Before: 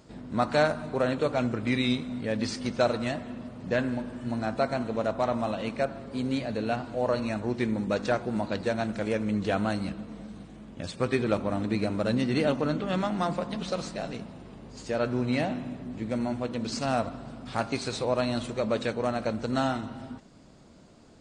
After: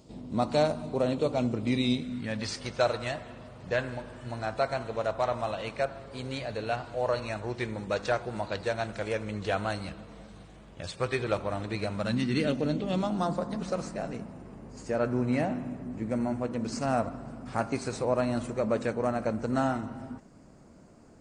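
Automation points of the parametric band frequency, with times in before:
parametric band −12.5 dB 0.85 octaves
0:01.90 1,600 Hz
0:02.48 240 Hz
0:11.81 240 Hz
0:12.60 1,100 Hz
0:13.72 3,600 Hz

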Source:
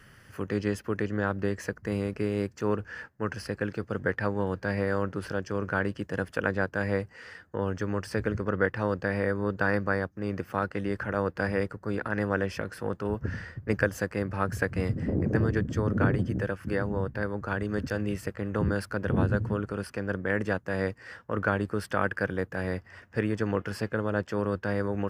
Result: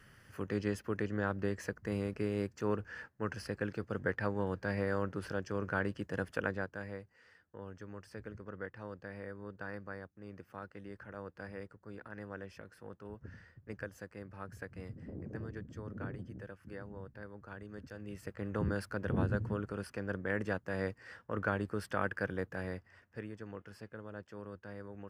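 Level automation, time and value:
0:06.39 −6 dB
0:07.00 −17.5 dB
0:17.97 −17.5 dB
0:18.43 −7 dB
0:22.52 −7 dB
0:23.38 −18 dB

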